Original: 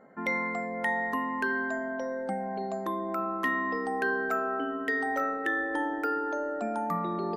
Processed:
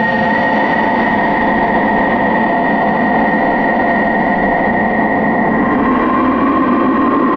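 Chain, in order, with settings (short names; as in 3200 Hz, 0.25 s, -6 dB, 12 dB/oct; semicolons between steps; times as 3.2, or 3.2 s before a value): low shelf 320 Hz +8 dB; hard clip -26.5 dBFS, distortion -12 dB; Paulstretch 22×, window 0.05 s, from 0.87; tape spacing loss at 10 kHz 42 dB; frequency-shifting echo 0.306 s, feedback 50%, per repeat +62 Hz, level -4 dB; maximiser +28 dB; gain -3.5 dB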